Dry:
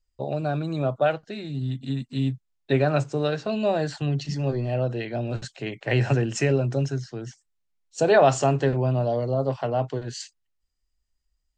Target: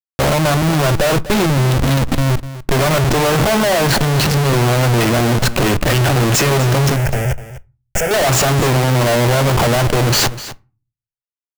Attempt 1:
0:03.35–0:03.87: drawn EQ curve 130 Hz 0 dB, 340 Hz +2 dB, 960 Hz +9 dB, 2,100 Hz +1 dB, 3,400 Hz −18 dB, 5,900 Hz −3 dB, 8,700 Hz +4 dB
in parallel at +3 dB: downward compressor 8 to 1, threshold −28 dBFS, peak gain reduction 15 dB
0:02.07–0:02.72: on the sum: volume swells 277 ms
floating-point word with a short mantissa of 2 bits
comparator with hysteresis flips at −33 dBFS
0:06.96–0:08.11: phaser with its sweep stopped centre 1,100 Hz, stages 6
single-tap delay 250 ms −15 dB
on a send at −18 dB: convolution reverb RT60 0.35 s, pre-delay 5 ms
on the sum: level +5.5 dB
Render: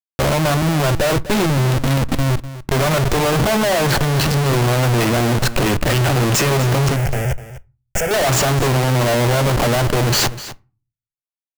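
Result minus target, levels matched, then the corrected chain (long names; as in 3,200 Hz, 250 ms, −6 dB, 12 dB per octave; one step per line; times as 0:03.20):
downward compressor: peak gain reduction +6 dB
0:03.35–0:03.87: drawn EQ curve 130 Hz 0 dB, 340 Hz +2 dB, 960 Hz +9 dB, 2,100 Hz +1 dB, 3,400 Hz −18 dB, 5,900 Hz −3 dB, 8,700 Hz +4 dB
in parallel at +3 dB: downward compressor 8 to 1, threshold −21 dBFS, peak gain reduction 9 dB
0:02.07–0:02.72: on the sum: volume swells 277 ms
floating-point word with a short mantissa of 2 bits
comparator with hysteresis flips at −33 dBFS
0:06.96–0:08.11: phaser with its sweep stopped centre 1,100 Hz, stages 6
single-tap delay 250 ms −15 dB
on a send at −18 dB: convolution reverb RT60 0.35 s, pre-delay 5 ms
on the sum: level +5.5 dB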